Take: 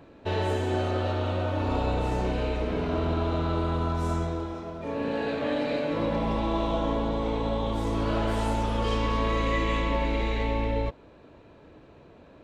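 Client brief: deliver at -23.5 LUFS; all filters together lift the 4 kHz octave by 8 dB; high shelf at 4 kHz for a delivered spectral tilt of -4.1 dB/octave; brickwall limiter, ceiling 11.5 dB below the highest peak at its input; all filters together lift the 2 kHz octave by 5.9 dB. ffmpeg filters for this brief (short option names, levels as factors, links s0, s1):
-af "equalizer=f=2000:t=o:g=4,highshelf=f=4000:g=8.5,equalizer=f=4000:t=o:g=4,volume=2.99,alimiter=limit=0.188:level=0:latency=1"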